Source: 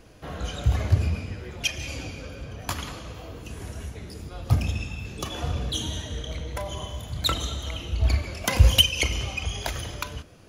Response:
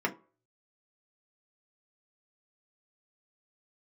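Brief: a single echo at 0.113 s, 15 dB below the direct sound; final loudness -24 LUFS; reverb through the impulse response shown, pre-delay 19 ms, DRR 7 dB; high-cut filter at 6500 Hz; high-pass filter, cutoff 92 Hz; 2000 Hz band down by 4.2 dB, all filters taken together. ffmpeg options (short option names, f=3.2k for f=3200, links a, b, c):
-filter_complex "[0:a]highpass=92,lowpass=6.5k,equalizer=f=2k:t=o:g=-5.5,aecho=1:1:113:0.178,asplit=2[a][b];[1:a]atrim=start_sample=2205,adelay=19[c];[b][c]afir=irnorm=-1:irlink=0,volume=-15.5dB[d];[a][d]amix=inputs=2:normalize=0,volume=6dB"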